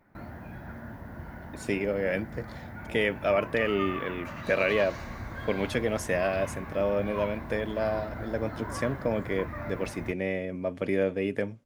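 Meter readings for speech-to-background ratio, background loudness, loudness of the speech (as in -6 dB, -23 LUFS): 9.5 dB, -39.5 LUFS, -30.0 LUFS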